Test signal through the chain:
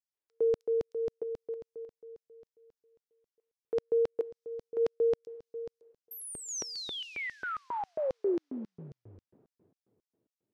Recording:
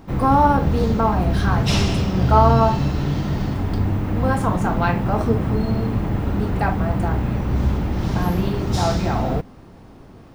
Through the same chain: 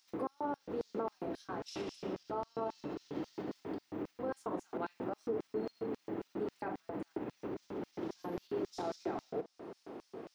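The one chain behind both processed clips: dynamic EQ 310 Hz, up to +6 dB, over -39 dBFS, Q 2.6; compressor 3:1, threshold -33 dBFS; plate-style reverb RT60 2.9 s, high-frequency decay 0.95×, DRR 18 dB; limiter -26 dBFS; LFO high-pass square 3.7 Hz 410–5400 Hz; tone controls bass +7 dB, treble -9 dB; gain -3.5 dB

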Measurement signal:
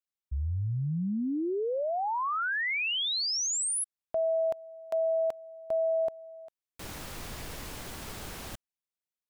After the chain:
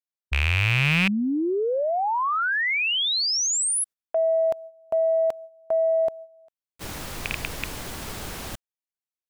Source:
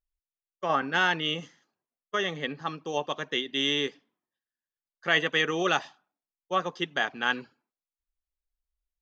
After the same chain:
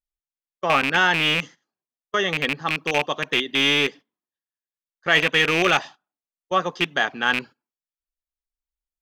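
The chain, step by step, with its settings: rattling part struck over -38 dBFS, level -16 dBFS; gate -44 dBFS, range -13 dB; in parallel at -8 dB: soft clip -18.5 dBFS; on the sum: gain +3.5 dB

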